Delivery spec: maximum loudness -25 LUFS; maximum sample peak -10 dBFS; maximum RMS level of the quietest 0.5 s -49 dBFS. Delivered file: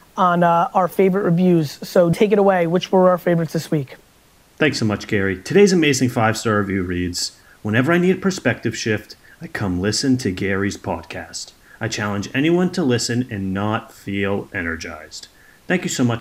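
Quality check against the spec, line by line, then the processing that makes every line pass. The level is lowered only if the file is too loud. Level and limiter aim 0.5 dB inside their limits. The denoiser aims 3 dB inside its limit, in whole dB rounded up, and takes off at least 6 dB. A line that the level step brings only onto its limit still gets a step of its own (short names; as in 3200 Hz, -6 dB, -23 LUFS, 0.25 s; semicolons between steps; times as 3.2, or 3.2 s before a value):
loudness -19.0 LUFS: fail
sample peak -2.0 dBFS: fail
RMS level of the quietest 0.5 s -53 dBFS: OK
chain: gain -6.5 dB; limiter -10.5 dBFS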